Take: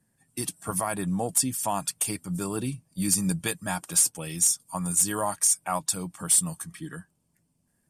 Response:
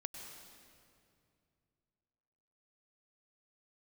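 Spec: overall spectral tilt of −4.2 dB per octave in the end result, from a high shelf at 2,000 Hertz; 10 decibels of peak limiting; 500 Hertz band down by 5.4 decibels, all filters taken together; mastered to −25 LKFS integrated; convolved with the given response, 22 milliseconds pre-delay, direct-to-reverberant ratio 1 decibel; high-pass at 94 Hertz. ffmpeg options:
-filter_complex "[0:a]highpass=94,equalizer=frequency=500:width_type=o:gain=-7,highshelf=frequency=2000:gain=-4,alimiter=level_in=1dB:limit=-24dB:level=0:latency=1,volume=-1dB,asplit=2[link_01][link_02];[1:a]atrim=start_sample=2205,adelay=22[link_03];[link_02][link_03]afir=irnorm=-1:irlink=0,volume=1.5dB[link_04];[link_01][link_04]amix=inputs=2:normalize=0,volume=7dB"

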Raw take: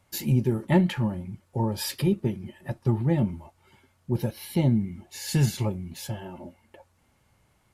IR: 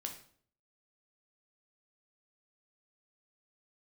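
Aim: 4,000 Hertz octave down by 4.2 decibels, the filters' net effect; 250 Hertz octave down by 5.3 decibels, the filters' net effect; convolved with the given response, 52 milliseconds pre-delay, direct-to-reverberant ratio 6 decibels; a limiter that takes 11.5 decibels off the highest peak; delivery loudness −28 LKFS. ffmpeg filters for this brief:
-filter_complex "[0:a]equalizer=frequency=250:width_type=o:gain=-8.5,equalizer=frequency=4000:width_type=o:gain=-5.5,alimiter=limit=-24dB:level=0:latency=1,asplit=2[link_01][link_02];[1:a]atrim=start_sample=2205,adelay=52[link_03];[link_02][link_03]afir=irnorm=-1:irlink=0,volume=-4.5dB[link_04];[link_01][link_04]amix=inputs=2:normalize=0,volume=6dB"

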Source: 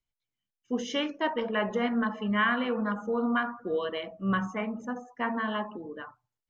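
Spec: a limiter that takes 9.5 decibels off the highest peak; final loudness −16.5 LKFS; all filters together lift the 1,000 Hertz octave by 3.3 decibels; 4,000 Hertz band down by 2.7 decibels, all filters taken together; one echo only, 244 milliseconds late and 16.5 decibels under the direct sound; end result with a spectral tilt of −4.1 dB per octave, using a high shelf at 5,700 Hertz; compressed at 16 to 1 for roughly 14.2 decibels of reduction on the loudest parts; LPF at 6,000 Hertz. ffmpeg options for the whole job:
ffmpeg -i in.wav -af "lowpass=6000,equalizer=frequency=1000:width_type=o:gain=4,equalizer=frequency=4000:width_type=o:gain=-6.5,highshelf=frequency=5700:gain=6,acompressor=threshold=-34dB:ratio=16,alimiter=level_in=10dB:limit=-24dB:level=0:latency=1,volume=-10dB,aecho=1:1:244:0.15,volume=26dB" out.wav

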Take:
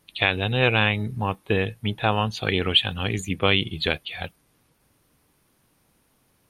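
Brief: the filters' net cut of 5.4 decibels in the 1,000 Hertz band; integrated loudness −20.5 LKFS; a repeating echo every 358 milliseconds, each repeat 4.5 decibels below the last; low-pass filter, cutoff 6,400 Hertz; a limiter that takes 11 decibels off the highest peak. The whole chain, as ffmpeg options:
ffmpeg -i in.wav -af "lowpass=6400,equalizer=frequency=1000:width_type=o:gain=-7.5,alimiter=limit=-16dB:level=0:latency=1,aecho=1:1:358|716|1074|1432|1790|2148|2506|2864|3222:0.596|0.357|0.214|0.129|0.0772|0.0463|0.0278|0.0167|0.01,volume=7dB" out.wav

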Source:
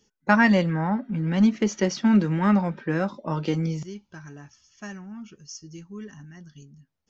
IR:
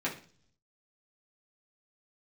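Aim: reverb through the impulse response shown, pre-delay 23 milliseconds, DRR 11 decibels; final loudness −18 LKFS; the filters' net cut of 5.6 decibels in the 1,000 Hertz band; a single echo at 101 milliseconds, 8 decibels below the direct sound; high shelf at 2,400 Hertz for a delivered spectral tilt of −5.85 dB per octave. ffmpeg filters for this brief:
-filter_complex "[0:a]equalizer=frequency=1000:width_type=o:gain=-6.5,highshelf=frequency=2400:gain=-4,aecho=1:1:101:0.398,asplit=2[link_01][link_02];[1:a]atrim=start_sample=2205,adelay=23[link_03];[link_02][link_03]afir=irnorm=-1:irlink=0,volume=-17.5dB[link_04];[link_01][link_04]amix=inputs=2:normalize=0,volume=4.5dB"

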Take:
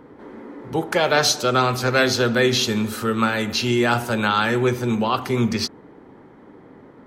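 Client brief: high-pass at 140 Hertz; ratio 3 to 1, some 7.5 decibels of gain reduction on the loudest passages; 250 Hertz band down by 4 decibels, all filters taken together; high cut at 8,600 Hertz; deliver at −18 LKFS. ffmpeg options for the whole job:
ffmpeg -i in.wav -af "highpass=140,lowpass=8600,equalizer=frequency=250:width_type=o:gain=-4.5,acompressor=threshold=-25dB:ratio=3,volume=9dB" out.wav

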